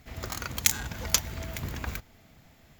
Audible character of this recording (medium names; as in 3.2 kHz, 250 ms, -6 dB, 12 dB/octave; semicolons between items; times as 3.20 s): noise floor -58 dBFS; spectral tilt -2.0 dB/octave